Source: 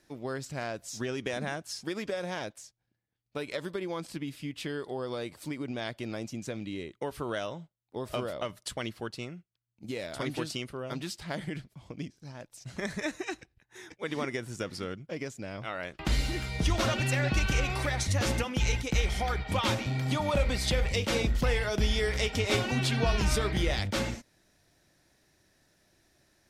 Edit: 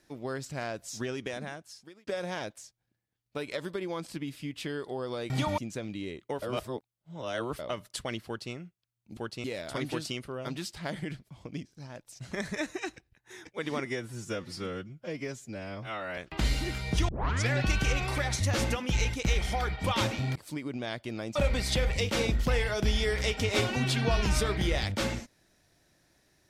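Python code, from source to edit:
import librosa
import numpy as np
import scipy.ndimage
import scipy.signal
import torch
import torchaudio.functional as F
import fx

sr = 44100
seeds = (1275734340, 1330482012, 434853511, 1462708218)

y = fx.edit(x, sr, fx.fade_out_span(start_s=0.99, length_s=1.08),
    fx.swap(start_s=5.3, length_s=1.0, other_s=20.03, other_length_s=0.28),
    fx.reverse_span(start_s=7.14, length_s=1.17),
    fx.duplicate(start_s=8.98, length_s=0.27, to_s=9.89),
    fx.stretch_span(start_s=14.3, length_s=1.55, factor=1.5),
    fx.tape_start(start_s=16.76, length_s=0.42), tone=tone)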